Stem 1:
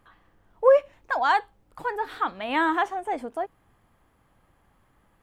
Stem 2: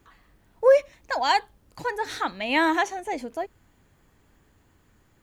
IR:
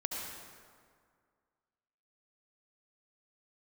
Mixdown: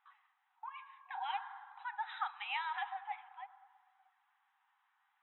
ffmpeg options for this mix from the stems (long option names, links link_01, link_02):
-filter_complex "[0:a]aemphasis=mode=production:type=75kf,volume=-13.5dB,asplit=3[link_01][link_02][link_03];[link_02]volume=-8.5dB[link_04];[1:a]volume=-1dB[link_05];[link_03]apad=whole_len=230580[link_06];[link_05][link_06]sidechaincompress=threshold=-38dB:ratio=8:attack=47:release=121[link_07];[2:a]atrim=start_sample=2205[link_08];[link_04][link_08]afir=irnorm=-1:irlink=0[link_09];[link_01][link_07][link_09]amix=inputs=3:normalize=0,afftfilt=real='re*between(b*sr/4096,740,4000)':imag='im*between(b*sr/4096,740,4000)':win_size=4096:overlap=0.75,highshelf=frequency=2300:gain=-12,flanger=delay=1.3:depth=8.7:regen=62:speed=0.49:shape=sinusoidal"